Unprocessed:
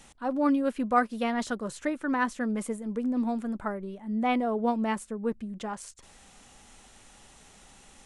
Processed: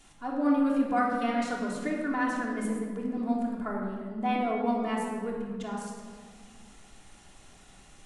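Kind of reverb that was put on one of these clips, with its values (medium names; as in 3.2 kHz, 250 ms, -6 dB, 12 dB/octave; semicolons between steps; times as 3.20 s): simulated room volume 2300 m³, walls mixed, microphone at 3.2 m; trim -6 dB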